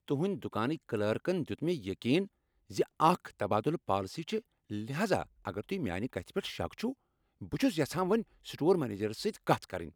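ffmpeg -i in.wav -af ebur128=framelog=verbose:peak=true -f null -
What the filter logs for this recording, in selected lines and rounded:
Integrated loudness:
  I:         -33.5 LUFS
  Threshold: -43.6 LUFS
Loudness range:
  LRA:         4.0 LU
  Threshold: -54.0 LUFS
  LRA low:   -36.6 LUFS
  LRA high:  -32.6 LUFS
True peak:
  Peak:      -11.0 dBFS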